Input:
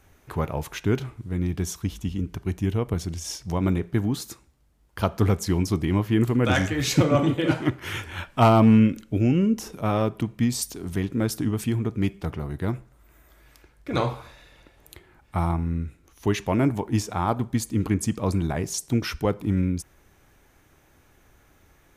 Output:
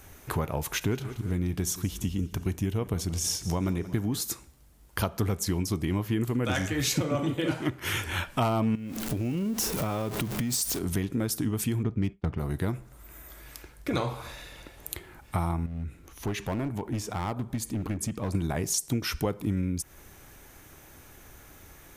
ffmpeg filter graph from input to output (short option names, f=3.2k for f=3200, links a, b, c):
-filter_complex "[0:a]asettb=1/sr,asplit=3[a][b][c];[a]atrim=end=0.634[d];[b]atrim=start=0.63:end=4.2,asetpts=PTS-STARTPTS,afade=t=in:d=0.004:c=qsin,afade=t=out:st=3.566:d=0.004:c=qsin,aecho=1:1:178|356|534|712:0.119|0.0547|0.0251|0.0116,atrim=end_sample=157437,asoftclip=type=hard:threshold=-14dB[e];[c]atrim=start=4.196[f];[d][e]acrossfade=d=0.004:c1=hsin:c2=qsin[g];[g][f]acrossfade=d=0.004:c1=qsin:c2=hsin,asettb=1/sr,asplit=3[h][i][j];[h]atrim=end=8.754[k];[i]atrim=start=8.75:end=10.79,asetpts=PTS-STARTPTS,afade=t=in:d=0.004:c=qsin,afade=t=out:st=2.036:d=0.004:c=qsin,aeval=exprs='val(0)+0.5*0.0211*sgn(val(0))':c=same,acompressor=threshold=-29dB:ratio=5:attack=3.2:release=140:knee=1:detection=peak[l];[j]atrim=start=10.786[m];[k][l]acrossfade=d=0.004:c1=hsin:c2=qsin[n];[n][m]acrossfade=d=0.004:c1=qsin:c2=hsin,asettb=1/sr,asplit=3[o][p][q];[o]atrim=end=11.834[r];[p]atrim=start=11.83:end=12.38,asetpts=PTS-STARTPTS,afade=t=in:d=0.004:c=qsin,afade=t=out:st=0.546:d=0.004:c=qsin,bass=f=250:g=5,treble=f=4k:g=0,adynamicsmooth=sensitivity=5.5:basefreq=3.3k,agate=range=-33dB:threshold=-31dB:ratio=3:release=100:detection=peak[s];[q]atrim=start=12.376[t];[r][s]acrossfade=d=0.004:c1=hsin:c2=qsin[u];[u][t]acrossfade=d=0.004:c1=qsin:c2=hsin,asettb=1/sr,asplit=3[v][w][x];[v]atrim=end=15.664[y];[w]atrim=start=15.66:end=18.35,asetpts=PTS-STARTPTS,afade=t=in:d=0.004:c=qsin,afade=t=out:st=2.686:d=0.004:c=qsin,bass=f=250:g=1,treble=f=4k:g=-6,acompressor=threshold=-48dB:ratio=1.5:attack=3.2:release=140:knee=1:detection=peak,aeval=exprs='clip(val(0),-1,0.0282)':c=same[z];[x]atrim=start=18.346[aa];[y][z]acrossfade=d=0.004:c1=hsin:c2=qsin[ab];[ab][aa]acrossfade=d=0.004:c1=qsin:c2=hsin,highshelf=f=6.5k:g=9.5,acompressor=threshold=-33dB:ratio=4,volume=6dB"